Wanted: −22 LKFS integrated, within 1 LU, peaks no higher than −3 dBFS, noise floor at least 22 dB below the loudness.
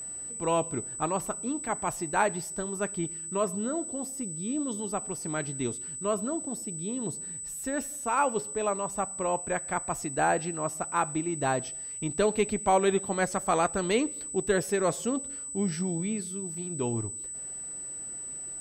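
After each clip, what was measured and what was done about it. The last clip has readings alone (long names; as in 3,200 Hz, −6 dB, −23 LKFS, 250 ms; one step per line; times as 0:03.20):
interfering tone 8,000 Hz; level of the tone −36 dBFS; integrated loudness −30.0 LKFS; sample peak −12.0 dBFS; target loudness −22.0 LKFS
→ notch filter 8,000 Hz, Q 30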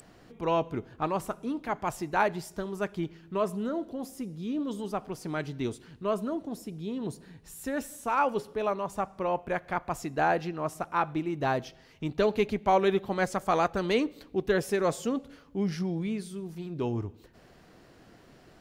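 interfering tone none found; integrated loudness −31.0 LKFS; sample peak −12.5 dBFS; target loudness −22.0 LKFS
→ level +9 dB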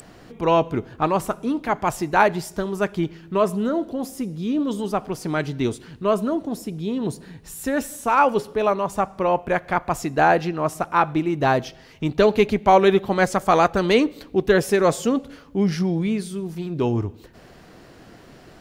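integrated loudness −22.0 LKFS; sample peak −3.5 dBFS; background noise floor −48 dBFS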